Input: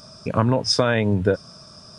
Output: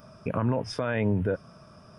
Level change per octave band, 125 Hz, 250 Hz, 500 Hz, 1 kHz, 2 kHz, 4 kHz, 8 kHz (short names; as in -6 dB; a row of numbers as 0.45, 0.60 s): -6.0, -6.0, -8.0, -9.0, -8.0, -18.0, -18.0 dB